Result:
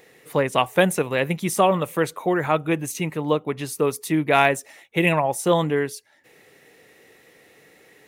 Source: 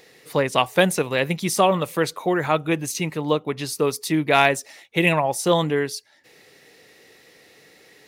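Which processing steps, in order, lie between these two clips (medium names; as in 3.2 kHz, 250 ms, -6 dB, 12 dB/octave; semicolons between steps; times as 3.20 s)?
peaking EQ 4.7 kHz -9.5 dB 0.82 oct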